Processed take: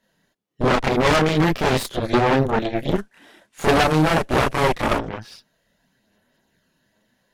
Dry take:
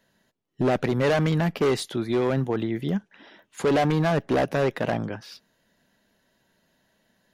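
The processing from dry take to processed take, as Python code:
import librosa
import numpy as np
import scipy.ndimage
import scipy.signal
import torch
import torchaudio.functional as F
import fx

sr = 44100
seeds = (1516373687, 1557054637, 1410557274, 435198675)

y = fx.cvsd(x, sr, bps=64000, at=(2.95, 4.96))
y = fx.chorus_voices(y, sr, voices=4, hz=0.59, base_ms=29, depth_ms=4.9, mix_pct=60)
y = fx.cheby_harmonics(y, sr, harmonics=(6,), levels_db=(-6,), full_scale_db=-13.0)
y = F.gain(torch.from_numpy(y), 3.5).numpy()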